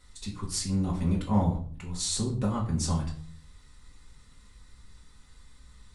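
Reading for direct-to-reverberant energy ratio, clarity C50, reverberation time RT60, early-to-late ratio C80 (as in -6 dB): -4.0 dB, 9.5 dB, 0.50 s, 13.0 dB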